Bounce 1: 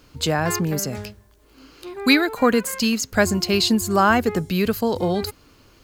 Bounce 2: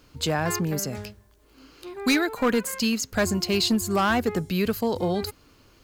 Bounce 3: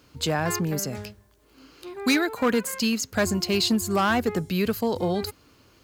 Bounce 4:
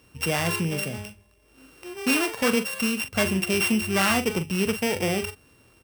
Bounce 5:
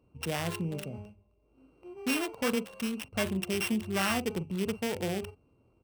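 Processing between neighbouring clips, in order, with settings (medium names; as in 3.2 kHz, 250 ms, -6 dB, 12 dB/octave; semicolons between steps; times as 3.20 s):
hard clipper -12.5 dBFS, distortion -14 dB; trim -3.5 dB
high-pass 59 Hz
sorted samples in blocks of 16 samples; peaking EQ 290 Hz -4.5 dB 0.28 oct; doubling 42 ms -10.5 dB
local Wiener filter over 25 samples; trim -6.5 dB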